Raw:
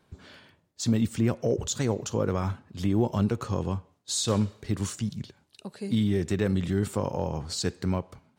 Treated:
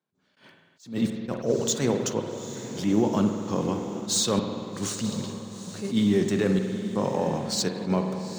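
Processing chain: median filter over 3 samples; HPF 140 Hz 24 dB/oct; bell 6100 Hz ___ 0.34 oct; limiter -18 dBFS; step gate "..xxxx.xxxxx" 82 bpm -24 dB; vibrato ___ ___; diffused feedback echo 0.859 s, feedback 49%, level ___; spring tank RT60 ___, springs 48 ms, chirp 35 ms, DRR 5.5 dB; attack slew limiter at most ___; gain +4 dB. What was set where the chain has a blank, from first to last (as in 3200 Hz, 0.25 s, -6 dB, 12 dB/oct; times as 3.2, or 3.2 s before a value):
+3.5 dB, 14 Hz, 7.6 cents, -12 dB, 1.9 s, 180 dB/s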